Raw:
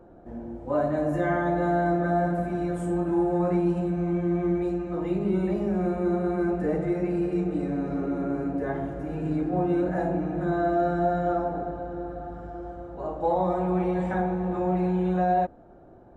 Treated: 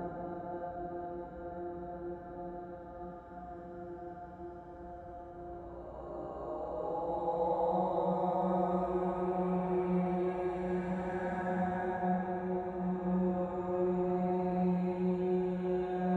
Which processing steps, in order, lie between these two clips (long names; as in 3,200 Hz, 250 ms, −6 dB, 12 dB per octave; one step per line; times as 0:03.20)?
hum removal 52.91 Hz, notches 28
extreme stretch with random phases 4.6×, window 0.50 s, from 0:11.64
level −7 dB